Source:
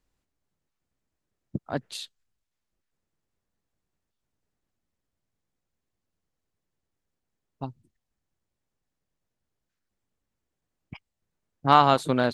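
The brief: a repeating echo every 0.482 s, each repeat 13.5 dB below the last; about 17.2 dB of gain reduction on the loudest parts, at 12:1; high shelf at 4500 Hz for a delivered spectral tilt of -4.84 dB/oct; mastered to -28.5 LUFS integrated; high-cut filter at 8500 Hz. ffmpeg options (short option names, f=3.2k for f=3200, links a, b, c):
-af "lowpass=8.5k,highshelf=f=4.5k:g=4,acompressor=threshold=-28dB:ratio=12,aecho=1:1:482|964:0.211|0.0444,volume=9dB"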